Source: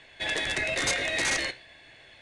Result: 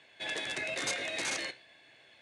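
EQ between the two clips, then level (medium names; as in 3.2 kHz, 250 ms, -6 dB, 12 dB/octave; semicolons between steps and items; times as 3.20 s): high-pass 150 Hz 12 dB/octave; band-stop 1.9 kHz, Q 17; -6.5 dB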